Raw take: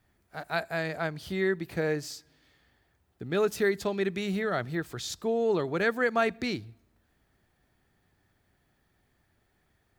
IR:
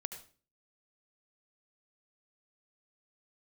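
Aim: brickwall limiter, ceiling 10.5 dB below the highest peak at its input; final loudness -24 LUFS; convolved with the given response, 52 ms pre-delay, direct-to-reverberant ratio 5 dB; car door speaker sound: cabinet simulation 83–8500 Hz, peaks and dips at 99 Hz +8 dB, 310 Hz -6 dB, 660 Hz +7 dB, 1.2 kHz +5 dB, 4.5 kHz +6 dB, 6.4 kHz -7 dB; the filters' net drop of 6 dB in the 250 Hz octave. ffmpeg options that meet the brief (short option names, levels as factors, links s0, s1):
-filter_complex "[0:a]equalizer=f=250:t=o:g=-7.5,alimiter=level_in=1.12:limit=0.0631:level=0:latency=1,volume=0.891,asplit=2[s0][s1];[1:a]atrim=start_sample=2205,adelay=52[s2];[s1][s2]afir=irnorm=-1:irlink=0,volume=0.668[s3];[s0][s3]amix=inputs=2:normalize=0,highpass=83,equalizer=f=99:t=q:w=4:g=8,equalizer=f=310:t=q:w=4:g=-6,equalizer=f=660:t=q:w=4:g=7,equalizer=f=1200:t=q:w=4:g=5,equalizer=f=4500:t=q:w=4:g=6,equalizer=f=6400:t=q:w=4:g=-7,lowpass=f=8500:w=0.5412,lowpass=f=8500:w=1.3066,volume=2.82"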